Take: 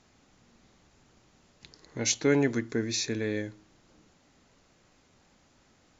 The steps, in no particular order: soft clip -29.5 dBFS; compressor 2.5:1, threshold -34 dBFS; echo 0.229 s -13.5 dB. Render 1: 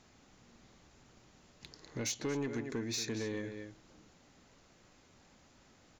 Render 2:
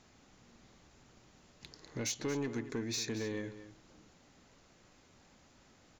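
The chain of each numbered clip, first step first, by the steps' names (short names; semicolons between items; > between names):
echo > compressor > soft clip; compressor > soft clip > echo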